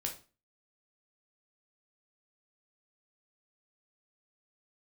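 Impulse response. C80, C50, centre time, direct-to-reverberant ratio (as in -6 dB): 16.0 dB, 10.0 dB, 17 ms, 1.0 dB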